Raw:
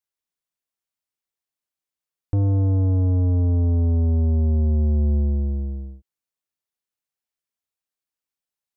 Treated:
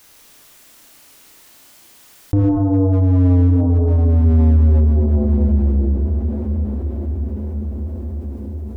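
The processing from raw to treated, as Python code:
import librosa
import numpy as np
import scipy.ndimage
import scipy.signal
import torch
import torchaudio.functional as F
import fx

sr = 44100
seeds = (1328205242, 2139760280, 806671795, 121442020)

p1 = fx.rev_schroeder(x, sr, rt60_s=1.4, comb_ms=26, drr_db=-2.5)
p2 = 10.0 ** (-15.5 / 20.0) * (np.abs((p1 / 10.0 ** (-15.5 / 20.0) + 3.0) % 4.0 - 2.0) - 1.0)
p3 = p1 + F.gain(torch.from_numpy(p2), -7.0).numpy()
p4 = fx.peak_eq(p3, sr, hz=300.0, db=6.5, octaves=0.3)
p5 = p4 + fx.echo_diffused(p4, sr, ms=1047, feedback_pct=43, wet_db=-13.0, dry=0)
p6 = fx.env_flatten(p5, sr, amount_pct=50)
y = F.gain(torch.from_numpy(p6), -2.0).numpy()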